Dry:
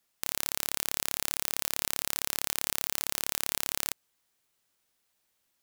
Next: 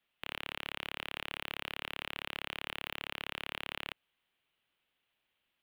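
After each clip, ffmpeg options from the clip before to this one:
-filter_complex "[0:a]highshelf=f=4.2k:t=q:w=3:g=-12,bandreject=f=7.4k:w=13,acrossover=split=320|930|3300[a][b][c][d];[d]alimiter=level_in=2.5dB:limit=-24dB:level=0:latency=1,volume=-2.5dB[e];[a][b][c][e]amix=inputs=4:normalize=0,volume=-3.5dB"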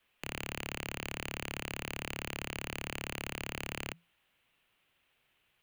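-af "asoftclip=type=tanh:threshold=-33.5dB,afreqshift=-170,volume=7.5dB"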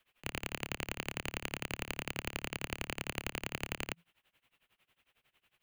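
-af "tremolo=f=11:d=0.94,volume=4dB"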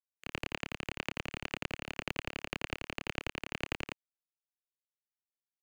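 -filter_complex "[0:a]tremolo=f=9.1:d=0.54,acrusher=bits=6:mix=0:aa=0.5,acrossover=split=6300[a][b];[b]acompressor=threshold=-57dB:ratio=4:attack=1:release=60[c];[a][c]amix=inputs=2:normalize=0,volume=3dB"

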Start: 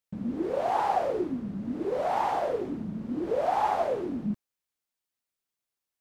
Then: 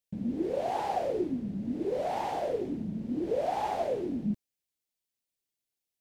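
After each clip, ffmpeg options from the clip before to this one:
-af "equalizer=f=1.2k:w=1.4:g=-12.5"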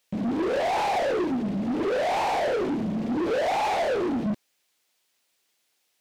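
-filter_complex "[0:a]asplit=2[a][b];[b]highpass=f=720:p=1,volume=28dB,asoftclip=type=tanh:threshold=-19dB[c];[a][c]amix=inputs=2:normalize=0,lowpass=f=4.1k:p=1,volume=-6dB"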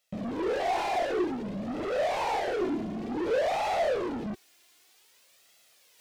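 -af "flanger=delay=1.5:depth=1.4:regen=32:speed=0.54:shape=sinusoidal,areverse,acompressor=mode=upward:threshold=-48dB:ratio=2.5,areverse"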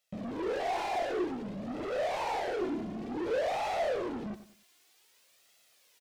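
-af "aecho=1:1:97|194|291:0.224|0.0739|0.0244,volume=-4dB"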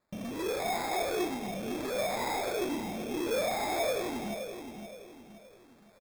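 -filter_complex "[0:a]asplit=2[a][b];[b]adelay=520,lowpass=f=960:p=1,volume=-7dB,asplit=2[c][d];[d]adelay=520,lowpass=f=960:p=1,volume=0.44,asplit=2[e][f];[f]adelay=520,lowpass=f=960:p=1,volume=0.44,asplit=2[g][h];[h]adelay=520,lowpass=f=960:p=1,volume=0.44,asplit=2[i][j];[j]adelay=520,lowpass=f=960:p=1,volume=0.44[k];[a][c][e][g][i][k]amix=inputs=6:normalize=0,acrusher=samples=15:mix=1:aa=0.000001"

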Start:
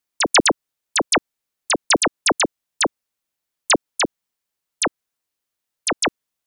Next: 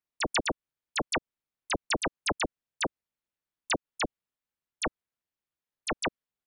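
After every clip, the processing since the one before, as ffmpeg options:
-af "bass=f=250:g=5,treble=f=4k:g=-9,tremolo=f=270:d=0.919,acompressor=threshold=-20dB:ratio=6,volume=-4.5dB"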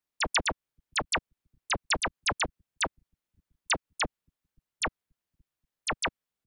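-filter_complex "[0:a]acrossover=split=150|680|4500[a][b][c][d];[a]aecho=1:1:530|1060|1590:0.0631|0.0315|0.0158[e];[b]asoftclip=type=tanh:threshold=-38dB[f];[e][f][c][d]amix=inputs=4:normalize=0,volume=2.5dB"

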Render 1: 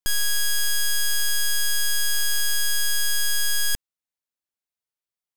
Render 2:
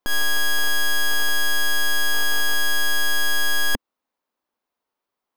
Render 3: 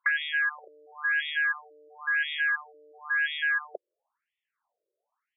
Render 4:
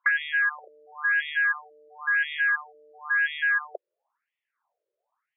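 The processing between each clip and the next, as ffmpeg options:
-af "equalizer=f=125:t=o:w=1:g=-7,equalizer=f=250:t=o:w=1:g=11,equalizer=f=500:t=o:w=1:g=7,equalizer=f=1k:t=o:w=1:g=11,equalizer=f=8k:t=o:w=1:g=-7,equalizer=f=16k:t=o:w=1:g=-4,alimiter=limit=-20dB:level=0:latency=1:release=138,volume=6.5dB"
-af "aeval=exprs='(mod(12.6*val(0)+1,2)-1)/12.6':c=same,afftfilt=real='re*between(b*sr/1024,430*pow(2600/430,0.5+0.5*sin(2*PI*0.97*pts/sr))/1.41,430*pow(2600/430,0.5+0.5*sin(2*PI*0.97*pts/sr))*1.41)':imag='im*between(b*sr/1024,430*pow(2600/430,0.5+0.5*sin(2*PI*0.97*pts/sr))/1.41,430*pow(2600/430,0.5+0.5*sin(2*PI*0.97*pts/sr))*1.41)':win_size=1024:overlap=0.75,volume=6.5dB"
-af "highpass=500,lowpass=2.3k,volume=4dB"

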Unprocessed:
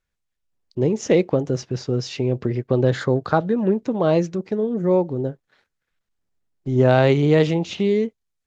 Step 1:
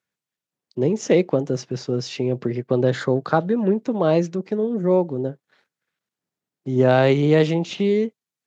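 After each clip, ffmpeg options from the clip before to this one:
-af "highpass=f=130:w=0.5412,highpass=f=130:w=1.3066"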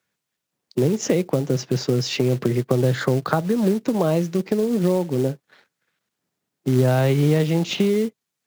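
-filter_complex "[0:a]acrossover=split=130[a][b];[b]acompressor=threshold=-25dB:ratio=10[c];[a][c]amix=inputs=2:normalize=0,acrusher=bits=5:mode=log:mix=0:aa=0.000001,volume=7.5dB"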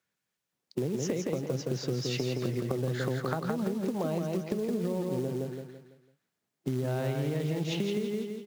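-filter_complex "[0:a]asplit=2[a][b];[b]aecho=0:1:167|334|501|668|835:0.631|0.24|0.0911|0.0346|0.0132[c];[a][c]amix=inputs=2:normalize=0,acompressor=threshold=-21dB:ratio=6,volume=-6.5dB"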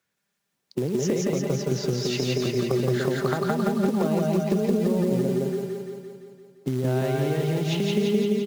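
-af "aecho=1:1:172|344|516|688|860|1032|1204|1376|1548:0.708|0.425|0.255|0.153|0.0917|0.055|0.033|0.0198|0.0119,volume=4.5dB"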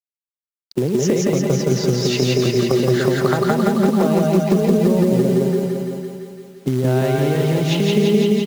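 -af "acrusher=bits=9:mix=0:aa=0.000001,aecho=1:1:505:0.335,volume=7dB"

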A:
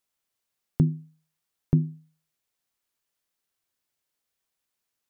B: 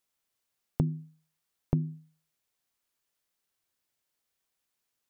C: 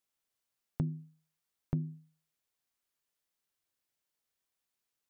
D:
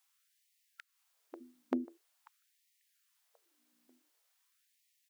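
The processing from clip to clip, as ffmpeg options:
-af "acompressor=threshold=-23dB:ratio=6"
-af "asoftclip=type=tanh:threshold=-14.5dB,volume=-4.5dB"
-filter_complex "[0:a]aeval=exprs='val(0)+0.000141*(sin(2*PI*60*n/s)+sin(2*PI*2*60*n/s)/2+sin(2*PI*3*60*n/s)/3+sin(2*PI*4*60*n/s)/4+sin(2*PI*5*60*n/s)/5)':c=same,asplit=2[a][b];[b]adelay=541,lowpass=f=1.6k:p=1,volume=-12.5dB,asplit=2[c][d];[d]adelay=541,lowpass=f=1.6k:p=1,volume=0.42,asplit=2[e][f];[f]adelay=541,lowpass=f=1.6k:p=1,volume=0.42,asplit=2[g][h];[h]adelay=541,lowpass=f=1.6k:p=1,volume=0.42[i];[a][c][e][g][i]amix=inputs=5:normalize=0,afftfilt=real='re*gte(b*sr/1024,210*pow(1800/210,0.5+0.5*sin(2*PI*0.46*pts/sr)))':imag='im*gte(b*sr/1024,210*pow(1800/210,0.5+0.5*sin(2*PI*0.46*pts/sr)))':win_size=1024:overlap=0.75,volume=10dB"

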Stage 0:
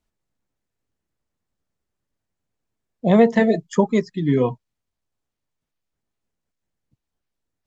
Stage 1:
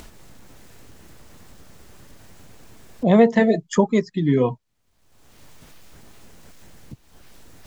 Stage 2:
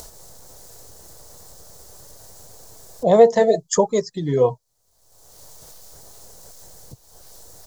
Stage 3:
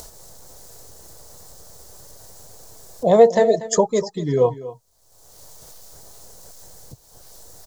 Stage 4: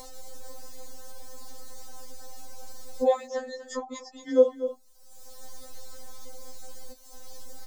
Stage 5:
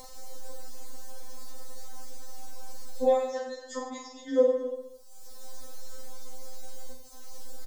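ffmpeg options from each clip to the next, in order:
-af "acompressor=mode=upward:threshold=-17dB:ratio=2.5"
-af "firequalizer=gain_entry='entry(130,0);entry(240,-9);entry(470,7);entry(730,6);entry(1300,-1);entry(2500,-8);entry(4200,7);entry(6100,12)':delay=0.05:min_phase=1,volume=-1.5dB"
-af "aecho=1:1:239:0.158"
-filter_complex "[0:a]acrossover=split=320|1400|4800[a][b][c][d];[a]acompressor=threshold=-39dB:ratio=4[e];[b]acompressor=threshold=-21dB:ratio=4[f];[c]acompressor=threshold=-52dB:ratio=4[g];[d]acompressor=threshold=-53dB:ratio=4[h];[e][f][g][h]amix=inputs=4:normalize=0,afftfilt=real='re*3.46*eq(mod(b,12),0)':imag='im*3.46*eq(mod(b,12),0)':win_size=2048:overlap=0.75,volume=3.5dB"
-af "aecho=1:1:40|88|145.6|214.7|297.7:0.631|0.398|0.251|0.158|0.1,volume=-3dB"

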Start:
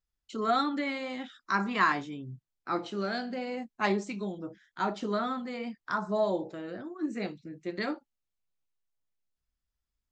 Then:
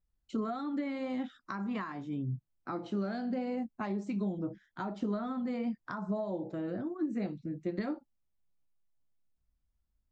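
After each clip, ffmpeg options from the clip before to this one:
-af "equalizer=f=420:w=2.6:g=-5,acompressor=threshold=-35dB:ratio=16,tiltshelf=f=940:g=8"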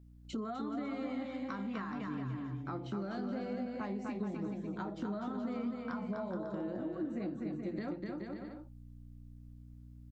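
-filter_complex "[0:a]aeval=exprs='val(0)+0.000891*(sin(2*PI*60*n/s)+sin(2*PI*2*60*n/s)/2+sin(2*PI*3*60*n/s)/3+sin(2*PI*4*60*n/s)/4+sin(2*PI*5*60*n/s)/5)':c=same,asplit=2[a][b];[b]aecho=0:1:250|425|547.5|633.2|693.3:0.631|0.398|0.251|0.158|0.1[c];[a][c]amix=inputs=2:normalize=0,acompressor=threshold=-51dB:ratio=2,volume=6dB"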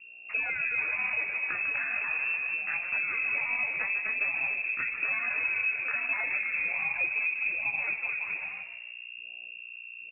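-filter_complex "[0:a]acrusher=samples=15:mix=1:aa=0.000001:lfo=1:lforange=9:lforate=1.2,asplit=2[a][b];[b]asplit=4[c][d][e][f];[c]adelay=149,afreqshift=92,volume=-10dB[g];[d]adelay=298,afreqshift=184,volume=-18.2dB[h];[e]adelay=447,afreqshift=276,volume=-26.4dB[i];[f]adelay=596,afreqshift=368,volume=-34.5dB[j];[g][h][i][j]amix=inputs=4:normalize=0[k];[a][k]amix=inputs=2:normalize=0,lowpass=f=2.4k:t=q:w=0.5098,lowpass=f=2.4k:t=q:w=0.6013,lowpass=f=2.4k:t=q:w=0.9,lowpass=f=2.4k:t=q:w=2.563,afreqshift=-2800,volume=7.5dB"

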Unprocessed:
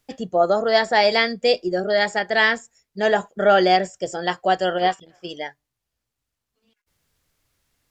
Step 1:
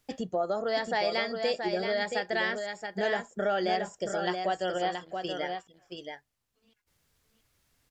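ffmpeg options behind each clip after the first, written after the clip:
-filter_complex "[0:a]acompressor=threshold=-30dB:ratio=2.5,asplit=2[a][b];[b]aecho=0:1:676:0.501[c];[a][c]amix=inputs=2:normalize=0,volume=-1.5dB"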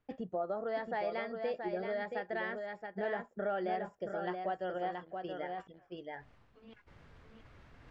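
-af "lowpass=1.8k,areverse,acompressor=mode=upward:threshold=-31dB:ratio=2.5,areverse,volume=-6.5dB"

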